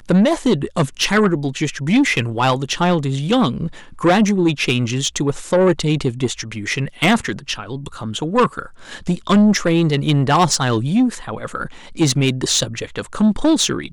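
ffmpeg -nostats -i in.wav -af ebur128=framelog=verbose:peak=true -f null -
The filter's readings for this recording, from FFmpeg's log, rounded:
Integrated loudness:
  I:         -17.7 LUFS
  Threshold: -28.0 LUFS
Loudness range:
  LRA:         2.8 LU
  Threshold: -38.1 LUFS
  LRA low:   -19.8 LUFS
  LRA high:  -17.0 LUFS
True peak:
  Peak:       -6.9 dBFS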